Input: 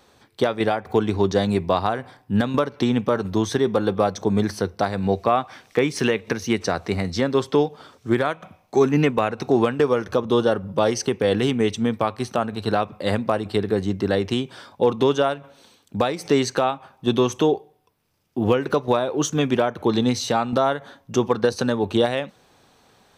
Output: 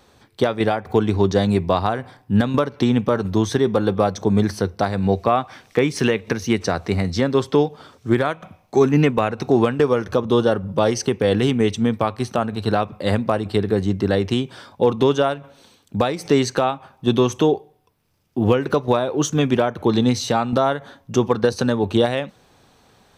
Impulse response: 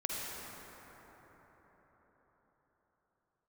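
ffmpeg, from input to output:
-af "lowshelf=f=160:g=6,volume=1.12"

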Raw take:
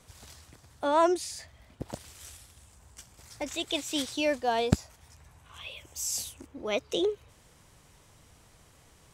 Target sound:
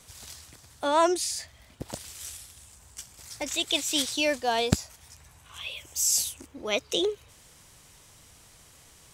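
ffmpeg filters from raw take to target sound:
-af "highshelf=f=2200:g=9"

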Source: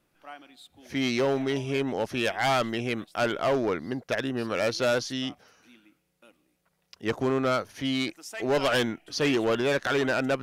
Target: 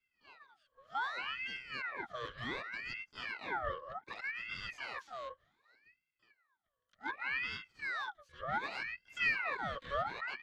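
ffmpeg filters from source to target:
-filter_complex "[0:a]asplit=3[s0][s1][s2];[s1]asetrate=29433,aresample=44100,atempo=1.49831,volume=0.316[s3];[s2]asetrate=88200,aresample=44100,atempo=0.5,volume=0.501[s4];[s0][s3][s4]amix=inputs=3:normalize=0,asplit=3[s5][s6][s7];[s5]bandpass=f=300:t=q:w=8,volume=1[s8];[s6]bandpass=f=870:t=q:w=8,volume=0.501[s9];[s7]bandpass=f=2240:t=q:w=8,volume=0.355[s10];[s8][s9][s10]amix=inputs=3:normalize=0,aeval=exprs='val(0)*sin(2*PI*1600*n/s+1600*0.5/0.66*sin(2*PI*0.66*n/s))':c=same"

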